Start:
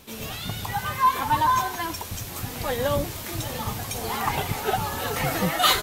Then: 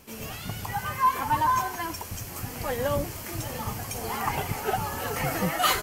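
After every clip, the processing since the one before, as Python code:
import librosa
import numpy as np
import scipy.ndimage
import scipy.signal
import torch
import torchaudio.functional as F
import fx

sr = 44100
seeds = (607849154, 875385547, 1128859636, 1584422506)

y = fx.peak_eq(x, sr, hz=3700.0, db=-12.0, octaves=0.25)
y = y * librosa.db_to_amplitude(-2.5)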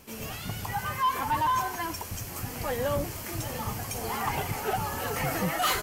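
y = 10.0 ** (-20.0 / 20.0) * np.tanh(x / 10.0 ** (-20.0 / 20.0))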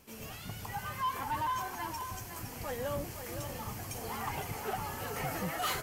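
y = x + 10.0 ** (-8.5 / 20.0) * np.pad(x, (int(513 * sr / 1000.0), 0))[:len(x)]
y = y * librosa.db_to_amplitude(-7.5)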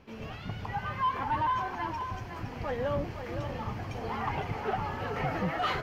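y = fx.air_absorb(x, sr, metres=270.0)
y = y * librosa.db_to_amplitude(6.0)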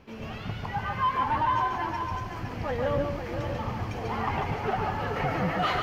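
y = x + 10.0 ** (-4.5 / 20.0) * np.pad(x, (int(143 * sr / 1000.0), 0))[:len(x)]
y = y * librosa.db_to_amplitude(2.5)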